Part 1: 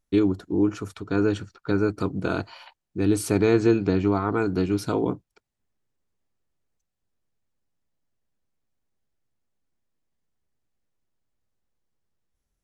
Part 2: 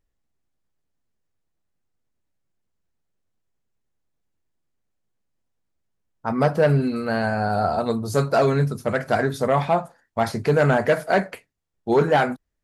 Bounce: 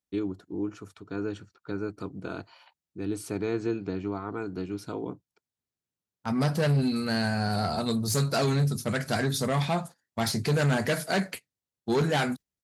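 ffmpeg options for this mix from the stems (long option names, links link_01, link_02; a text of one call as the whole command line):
ffmpeg -i stem1.wav -i stem2.wav -filter_complex "[0:a]volume=-10dB[link_01];[1:a]agate=range=-13dB:threshold=-36dB:ratio=16:detection=peak,firequalizer=gain_entry='entry(160,0);entry(530,-10);entry(3900,6)':delay=0.05:min_phase=1,asoftclip=type=tanh:threshold=-20.5dB,volume=1.5dB[link_02];[link_01][link_02]amix=inputs=2:normalize=0,highpass=87" out.wav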